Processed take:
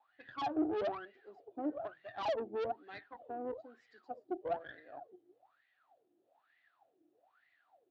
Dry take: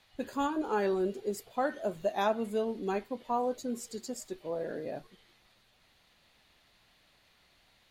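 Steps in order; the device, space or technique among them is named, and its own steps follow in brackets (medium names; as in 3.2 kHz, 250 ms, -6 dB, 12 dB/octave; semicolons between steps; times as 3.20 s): wah-wah guitar rig (wah-wah 1.1 Hz 330–2000 Hz, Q 19; valve stage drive 51 dB, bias 0.75; cabinet simulation 95–4600 Hz, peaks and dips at 120 Hz +8 dB, 180 Hz -5 dB, 300 Hz +10 dB, 720 Hz +9 dB, 1 kHz -5 dB, 2.1 kHz -7 dB); trim +16 dB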